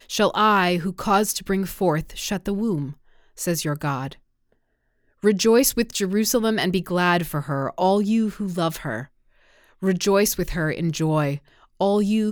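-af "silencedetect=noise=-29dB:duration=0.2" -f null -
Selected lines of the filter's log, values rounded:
silence_start: 2.91
silence_end: 3.40 | silence_duration: 0.49
silence_start: 4.13
silence_end: 5.24 | silence_duration: 1.11
silence_start: 9.03
silence_end: 9.83 | silence_duration: 0.79
silence_start: 11.37
silence_end: 11.81 | silence_duration: 0.44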